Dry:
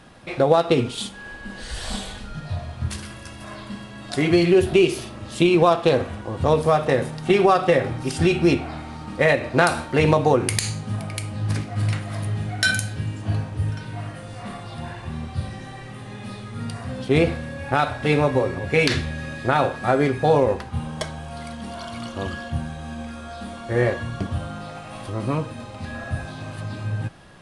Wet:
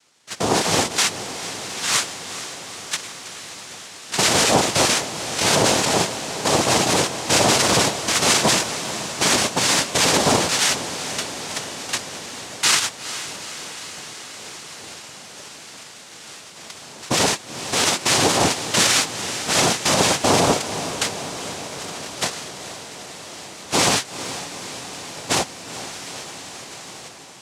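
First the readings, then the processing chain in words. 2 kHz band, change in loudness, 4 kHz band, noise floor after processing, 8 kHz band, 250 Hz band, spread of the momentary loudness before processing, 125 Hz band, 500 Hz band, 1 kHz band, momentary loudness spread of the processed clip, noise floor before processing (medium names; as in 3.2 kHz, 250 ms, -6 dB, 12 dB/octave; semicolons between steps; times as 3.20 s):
+3.0 dB, +3.0 dB, +12.0 dB, -40 dBFS, +16.5 dB, -3.0 dB, 17 LU, -6.5 dB, -4.0 dB, +2.0 dB, 19 LU, -38 dBFS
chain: high-pass 1.1 kHz 6 dB/octave; gate -32 dBFS, range -19 dB; treble shelf 2.1 kHz +9.5 dB; in parallel at +3 dB: compression, threshold -32 dBFS, peak gain reduction 21 dB; on the sum: peak limiter -15 dBFS, peak gain reduction 19 dB; level rider gain up to 10 dB; hard clipper -12.5 dBFS, distortion -13 dB; noise-vocoded speech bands 2; on a send: echo that smears into a reverb 452 ms, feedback 72%, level -12 dB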